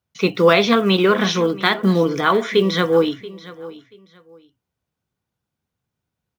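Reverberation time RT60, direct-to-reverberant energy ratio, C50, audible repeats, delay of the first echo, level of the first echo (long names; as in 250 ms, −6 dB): no reverb audible, no reverb audible, no reverb audible, 2, 682 ms, −18.5 dB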